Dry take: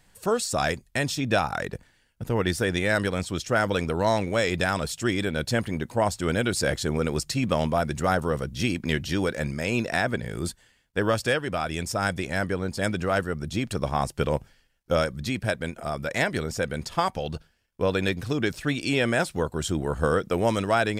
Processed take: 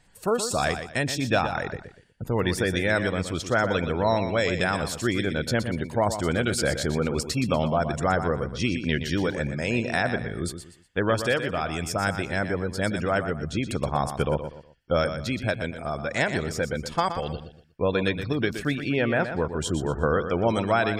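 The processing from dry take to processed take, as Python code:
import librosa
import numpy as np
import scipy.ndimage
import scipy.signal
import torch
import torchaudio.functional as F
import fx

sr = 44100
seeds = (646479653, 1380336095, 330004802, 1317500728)

y = fx.spec_gate(x, sr, threshold_db=-30, keep='strong')
y = fx.lowpass(y, sr, hz=2400.0, slope=12, at=(18.75, 19.53))
y = fx.echo_feedback(y, sr, ms=121, feedback_pct=31, wet_db=-9.5)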